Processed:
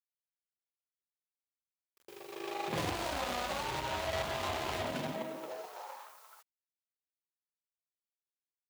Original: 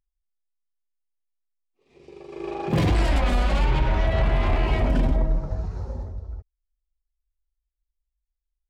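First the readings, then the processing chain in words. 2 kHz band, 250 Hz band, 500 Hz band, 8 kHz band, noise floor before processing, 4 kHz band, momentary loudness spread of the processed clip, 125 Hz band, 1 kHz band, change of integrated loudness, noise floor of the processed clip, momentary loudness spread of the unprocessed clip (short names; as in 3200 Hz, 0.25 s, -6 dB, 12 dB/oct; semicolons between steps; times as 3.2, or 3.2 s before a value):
-7.5 dB, -14.5 dB, -9.0 dB, n/a, -83 dBFS, -4.0 dB, 15 LU, -21.5 dB, -6.5 dB, -12.5 dB, under -85 dBFS, 14 LU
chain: median filter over 25 samples; LPF 4000 Hz 6 dB/oct; gate with hold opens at -41 dBFS; HPF 50 Hz; low shelf 350 Hz -10 dB; in parallel at -1.5 dB: compressor, threshold -39 dBFS, peak gain reduction 13.5 dB; on the sum: bit-crush 11-bit; high-pass sweep 75 Hz -> 1100 Hz, 4.77–6.02; tilt +4 dB/oct; gain -3.5 dB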